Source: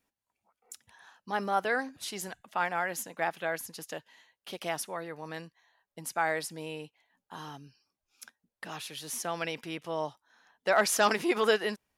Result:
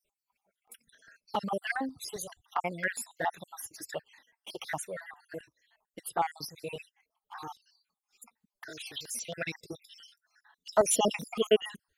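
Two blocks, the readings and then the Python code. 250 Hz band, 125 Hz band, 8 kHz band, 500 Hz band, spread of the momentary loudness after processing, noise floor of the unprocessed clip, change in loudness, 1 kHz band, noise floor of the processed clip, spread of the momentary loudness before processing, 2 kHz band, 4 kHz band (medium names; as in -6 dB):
-2.0 dB, -1.0 dB, +1.0 dB, -1.0 dB, 19 LU, under -85 dBFS, -1.5 dB, -3.0 dB, under -85 dBFS, 20 LU, -5.0 dB, -1.5 dB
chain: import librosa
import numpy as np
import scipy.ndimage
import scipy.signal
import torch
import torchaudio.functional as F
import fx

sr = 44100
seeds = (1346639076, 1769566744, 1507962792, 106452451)

y = fx.spec_dropout(x, sr, seeds[0], share_pct=63)
y = fx.env_flanger(y, sr, rest_ms=5.0, full_db=-29.0)
y = fx.filter_held_notch(y, sr, hz=7.4, low_hz=220.0, high_hz=6100.0)
y = F.gain(torch.from_numpy(y), 7.0).numpy()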